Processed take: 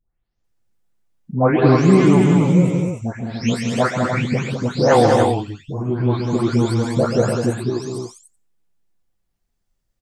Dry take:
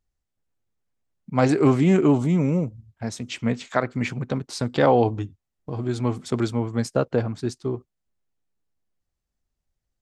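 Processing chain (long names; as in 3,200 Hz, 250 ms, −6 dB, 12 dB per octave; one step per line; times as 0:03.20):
every frequency bin delayed by itself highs late, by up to 442 ms
loudspeakers that aren't time-aligned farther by 46 metres −9 dB, 69 metres −5 dB, 100 metres −6 dB
level +5 dB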